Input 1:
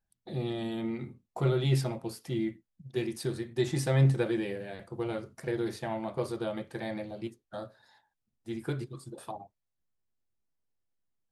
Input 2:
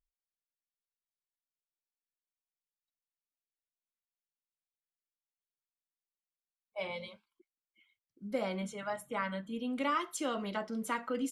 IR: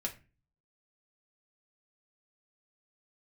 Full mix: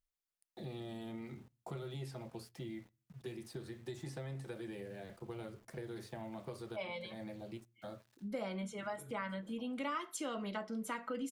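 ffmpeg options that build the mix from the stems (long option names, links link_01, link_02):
-filter_complex "[0:a]acrossover=split=120|510|1200|5900[link_01][link_02][link_03][link_04][link_05];[link_01]acompressor=threshold=-45dB:ratio=4[link_06];[link_02]acompressor=threshold=-41dB:ratio=4[link_07];[link_03]acompressor=threshold=-47dB:ratio=4[link_08];[link_04]acompressor=threshold=-52dB:ratio=4[link_09];[link_05]acompressor=threshold=-57dB:ratio=4[link_10];[link_06][link_07][link_08][link_09][link_10]amix=inputs=5:normalize=0,aeval=exprs='val(0)*gte(abs(val(0)),0.0015)':channel_layout=same,adelay=300,volume=-6dB,asplit=2[link_11][link_12];[link_12]volume=-17.5dB[link_13];[1:a]volume=-2dB,asplit=3[link_14][link_15][link_16];[link_15]volume=-13.5dB[link_17];[link_16]apad=whole_len=512106[link_18];[link_11][link_18]sidechaincompress=threshold=-56dB:ratio=8:attack=8.7:release=128[link_19];[2:a]atrim=start_sample=2205[link_20];[link_13][link_17]amix=inputs=2:normalize=0[link_21];[link_21][link_20]afir=irnorm=-1:irlink=0[link_22];[link_19][link_14][link_22]amix=inputs=3:normalize=0,acompressor=threshold=-40dB:ratio=2"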